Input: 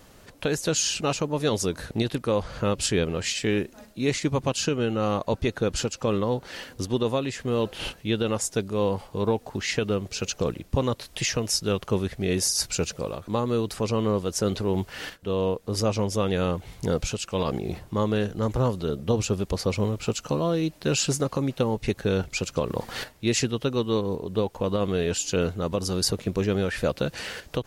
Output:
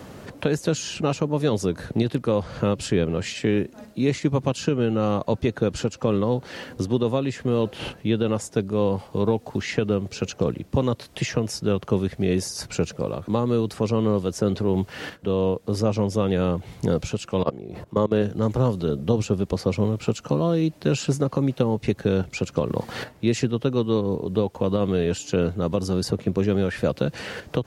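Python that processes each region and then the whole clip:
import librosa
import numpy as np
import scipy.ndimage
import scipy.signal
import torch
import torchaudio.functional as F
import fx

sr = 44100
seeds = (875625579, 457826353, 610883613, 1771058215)

y = fx.chain(x, sr, fx.peak_eq(hz=620.0, db=7.0, octaves=2.5),
    fx.notch(hz=780.0, q=8.5),
    fx.level_steps(step_db=21), at=(17.43, 18.22))
y = scipy.signal.sosfilt(scipy.signal.butter(2, 110.0, 'highpass', fs=sr, output='sos'), y)
y = fx.tilt_eq(y, sr, slope=-2.0)
y = fx.band_squash(y, sr, depth_pct=40)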